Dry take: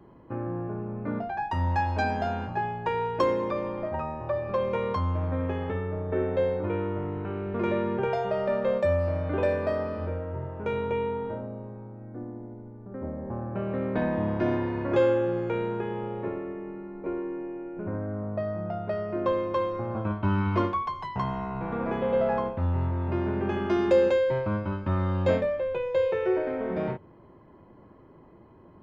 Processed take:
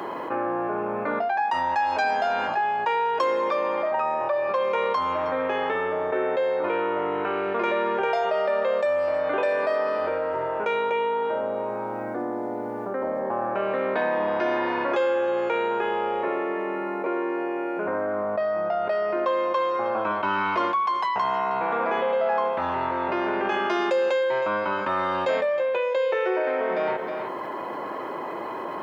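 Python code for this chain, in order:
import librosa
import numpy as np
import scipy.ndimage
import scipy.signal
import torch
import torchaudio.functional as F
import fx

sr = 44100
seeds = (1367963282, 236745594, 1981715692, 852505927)

y = scipy.signal.sosfilt(scipy.signal.butter(2, 630.0, 'highpass', fs=sr, output='sos'), x)
y = y + 10.0 ** (-19.0 / 20.0) * np.pad(y, (int(316 * sr / 1000.0), 0))[:len(y)]
y = fx.env_flatten(y, sr, amount_pct=70)
y = F.gain(torch.from_numpy(y), 1.5).numpy()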